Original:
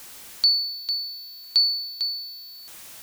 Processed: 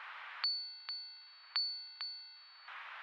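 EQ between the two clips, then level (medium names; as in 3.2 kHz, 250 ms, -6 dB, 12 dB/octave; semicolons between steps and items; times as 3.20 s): high-pass 1.1 kHz 24 dB/octave; distance through air 470 m; tape spacing loss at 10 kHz 37 dB; +17.0 dB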